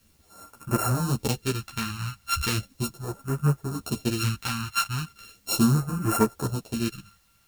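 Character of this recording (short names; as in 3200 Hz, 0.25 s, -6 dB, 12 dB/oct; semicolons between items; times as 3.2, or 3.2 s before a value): a buzz of ramps at a fixed pitch in blocks of 32 samples; phasing stages 2, 0.37 Hz, lowest notch 400–3400 Hz; a quantiser's noise floor 12-bit, dither triangular; a shimmering, thickened sound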